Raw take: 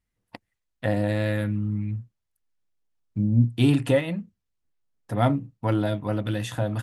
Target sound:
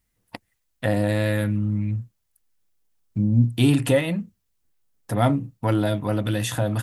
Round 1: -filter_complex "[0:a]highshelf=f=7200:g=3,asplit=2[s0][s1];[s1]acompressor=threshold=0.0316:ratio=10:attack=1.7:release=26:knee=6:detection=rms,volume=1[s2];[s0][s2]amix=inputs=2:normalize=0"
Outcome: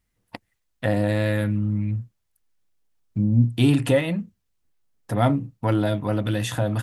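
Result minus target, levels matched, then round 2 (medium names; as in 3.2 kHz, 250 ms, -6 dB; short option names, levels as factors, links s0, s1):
8 kHz band -3.5 dB
-filter_complex "[0:a]highshelf=f=7200:g=10,asplit=2[s0][s1];[s1]acompressor=threshold=0.0316:ratio=10:attack=1.7:release=26:knee=6:detection=rms,volume=1[s2];[s0][s2]amix=inputs=2:normalize=0"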